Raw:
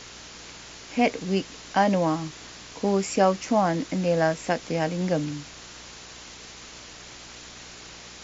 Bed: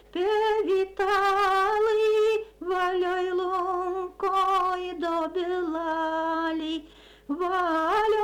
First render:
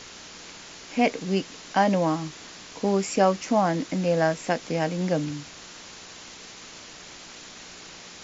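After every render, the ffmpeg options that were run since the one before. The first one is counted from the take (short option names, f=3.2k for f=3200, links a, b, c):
-af "bandreject=f=60:t=h:w=4,bandreject=f=120:t=h:w=4"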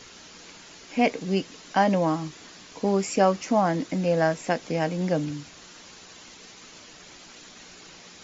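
-af "afftdn=nr=6:nf=-44"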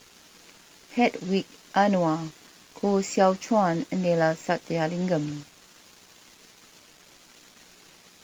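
-af "aeval=exprs='sgn(val(0))*max(abs(val(0))-0.00335,0)':c=same"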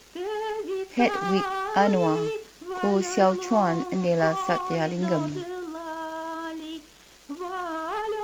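-filter_complex "[1:a]volume=-6.5dB[a];[0:a][a]amix=inputs=2:normalize=0"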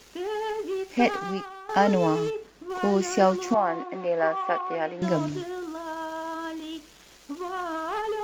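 -filter_complex "[0:a]asettb=1/sr,asplit=3[a][b][c];[a]atrim=end=2.304[d];[b]atrim=start=2.3:end=2.7,asetpts=PTS-STARTPTS,afade=t=in:d=0.004:c=qsin,afade=t=out:st=0.396:d=0.004:c=qsin,highshelf=f=2.4k:g=-11[e];[c]atrim=start=2.696[f];[d][e]acrossfade=d=0.004:c1=hsin:c2=qsin[g];[g][f]acrossfade=d=0.004:c1=qsin:c2=hsin,asettb=1/sr,asplit=3[h][i][j];[h]atrim=end=3.544[k];[i]atrim=start=3.54:end=5.02,asetpts=PTS-STARTPTS,afade=t=in:d=0.004:c=qsin,afade=t=out:st=1.476:d=0.004:c=qsin,highpass=420,lowpass=2.3k[l];[j]atrim=start=5.016[m];[k][l]acrossfade=d=0.004:c1=hsin:c2=qsin[n];[n][m]acrossfade=d=0.004:c1=qsin:c2=hsin,asplit=2[o][p];[o]atrim=end=1.69,asetpts=PTS-STARTPTS,afade=t=out:st=1.06:d=0.63:c=qua:silence=0.188365[q];[p]atrim=start=1.69,asetpts=PTS-STARTPTS,afade=t=in:d=0.004:c=hsin:silence=0.188365[r];[q][r]concat=n=2:v=0:a=1"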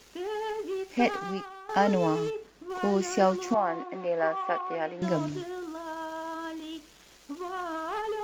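-af "volume=-3dB"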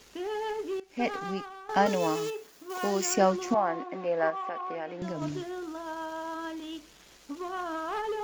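-filter_complex "[0:a]asettb=1/sr,asplit=3[a][b][c];[a]atrim=end=1.864[d];[b]atrim=start=1.86:end=3.14,asetpts=PTS-STARTPTS,afade=t=in:d=0.004:c=qsin,afade=t=out:st=1.276:d=0.004:c=qsin,aemphasis=mode=production:type=bsi[e];[c]atrim=start=3.136[f];[d][e]acrossfade=d=0.004:c1=hsin:c2=qsin[g];[g][f]acrossfade=d=0.004:c1=qsin:c2=hsin,asettb=1/sr,asplit=3[h][i][j];[h]atrim=end=4.304[k];[i]atrim=start=4.3:end=5.22,asetpts=PTS-STARTPTS,afade=t=in:d=0.004:c=qsin,afade=t=out:st=0.916:d=0.004:c=qsin,acompressor=threshold=-31dB:ratio=5:attack=3.2:release=140:knee=1:detection=peak[l];[j]atrim=start=5.216[m];[k][l]acrossfade=d=0.004:c1=hsin:c2=qsin[n];[n][m]acrossfade=d=0.004:c1=qsin:c2=hsin,asplit=2[o][p];[o]atrim=end=0.8,asetpts=PTS-STARTPTS,afade=t=out:st=0.796:d=0.004:c=hsin:silence=0.125893[q];[p]atrim=start=0.8,asetpts=PTS-STARTPTS,afade=t=in:d=0.46:silence=0.125893[r];[q][r]concat=n=2:v=0:a=1"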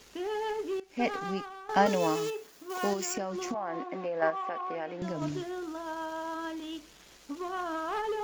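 -filter_complex "[0:a]asettb=1/sr,asplit=3[a][b][c];[a]atrim=end=2.934[d];[b]atrim=start=2.93:end=4.22,asetpts=PTS-STARTPTS,afade=t=in:d=0.004:c=qsin,afade=t=out:st=1.286:d=0.004:c=qsin,acompressor=threshold=-29dB:ratio=10:attack=3.2:release=140:knee=1:detection=peak[e];[c]atrim=start=4.216[f];[d][e]acrossfade=d=0.004:c1=hsin:c2=qsin[g];[g][f]acrossfade=d=0.004:c1=qsin:c2=hsin"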